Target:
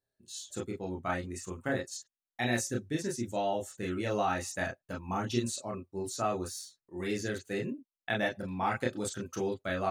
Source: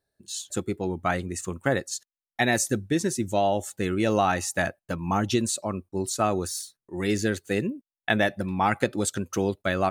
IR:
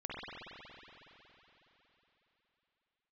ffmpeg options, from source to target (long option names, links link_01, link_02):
-filter_complex "[1:a]atrim=start_sample=2205,atrim=end_sample=3969,asetrate=79380,aresample=44100[link_01];[0:a][link_01]afir=irnorm=-1:irlink=0"